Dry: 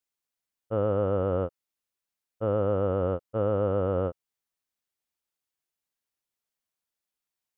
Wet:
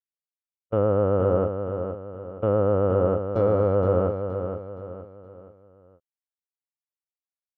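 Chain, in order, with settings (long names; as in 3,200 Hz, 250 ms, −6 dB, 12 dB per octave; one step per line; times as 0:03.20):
0:03.29–0:03.75: running median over 15 samples
noise gate −32 dBFS, range −28 dB
treble cut that deepens with the level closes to 2,100 Hz, closed at −22.5 dBFS
on a send: repeating echo 470 ms, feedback 39%, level −7.5 dB
on the sum: level +4.5 dB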